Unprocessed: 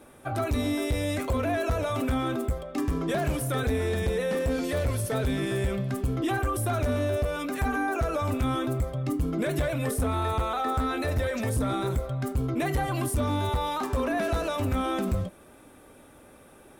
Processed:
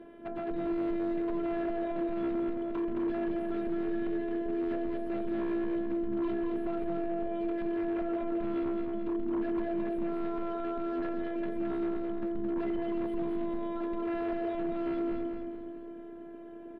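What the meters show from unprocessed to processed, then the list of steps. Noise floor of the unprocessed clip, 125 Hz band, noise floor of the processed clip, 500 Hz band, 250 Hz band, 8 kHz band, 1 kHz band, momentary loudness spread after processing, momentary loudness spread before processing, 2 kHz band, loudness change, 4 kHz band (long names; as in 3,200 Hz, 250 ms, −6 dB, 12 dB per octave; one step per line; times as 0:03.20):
−53 dBFS, −22.0 dB, −45 dBFS, −4.0 dB, −0.5 dB, below −35 dB, −9.5 dB, 3 LU, 2 LU, −13.0 dB, −5.0 dB, below −15 dB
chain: high-pass filter 42 Hz 24 dB per octave
notch filter 1,500 Hz, Q 8
downward compressor 4 to 1, threshold −36 dBFS, peak gain reduction 12 dB
phases set to zero 338 Hz
hollow resonant body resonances 230/420/1,600/3,000 Hz, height 14 dB, ringing for 30 ms
wave folding −28.5 dBFS
high-frequency loss of the air 480 metres
repeating echo 218 ms, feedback 49%, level −4.5 dB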